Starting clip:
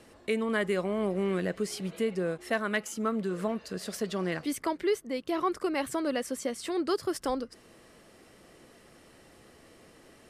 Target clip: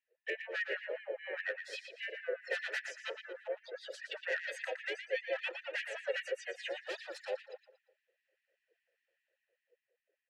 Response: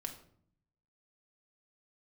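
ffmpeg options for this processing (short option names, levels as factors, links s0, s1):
-filter_complex "[0:a]afftdn=nr=27:nf=-40,adynamicequalizer=threshold=0.01:dfrequency=300:dqfactor=0.87:tfrequency=300:tqfactor=0.87:attack=5:release=100:ratio=0.375:range=2.5:mode=cutabove:tftype=bell,acrossover=split=380|1100[s0][s1][s2];[s0]acompressor=threshold=0.00447:ratio=6[s3];[s1]alimiter=level_in=3.76:limit=0.0631:level=0:latency=1:release=496,volume=0.266[s4];[s2]dynaudnorm=f=120:g=17:m=2.24[s5];[s3][s4][s5]amix=inputs=3:normalize=0,aeval=exprs='0.0422*(abs(mod(val(0)/0.0422+3,4)-2)-1)':c=same,asplit=3[s6][s7][s8];[s7]asetrate=35002,aresample=44100,atempo=1.25992,volume=0.891[s9];[s8]asetrate=58866,aresample=44100,atempo=0.749154,volume=0.224[s10];[s6][s9][s10]amix=inputs=3:normalize=0,asplit=3[s11][s12][s13];[s11]bandpass=f=530:t=q:w=8,volume=1[s14];[s12]bandpass=f=1840:t=q:w=8,volume=0.501[s15];[s13]bandpass=f=2480:t=q:w=8,volume=0.355[s16];[s14][s15][s16]amix=inputs=3:normalize=0,asplit=2[s17][s18];[s18]adelay=116,lowpass=f=4900:p=1,volume=0.473,asplit=2[s19][s20];[s20]adelay=116,lowpass=f=4900:p=1,volume=0.4,asplit=2[s21][s22];[s22]adelay=116,lowpass=f=4900:p=1,volume=0.4,asplit=2[s23][s24];[s24]adelay=116,lowpass=f=4900:p=1,volume=0.4,asplit=2[s25][s26];[s26]adelay=116,lowpass=f=4900:p=1,volume=0.4[s27];[s17][s19][s21][s23][s25][s27]amix=inputs=6:normalize=0,afftfilt=real='re*gte(b*sr/1024,330*pow(1700/330,0.5+0.5*sin(2*PI*5*pts/sr)))':imag='im*gte(b*sr/1024,330*pow(1700/330,0.5+0.5*sin(2*PI*5*pts/sr)))':win_size=1024:overlap=0.75,volume=2.37"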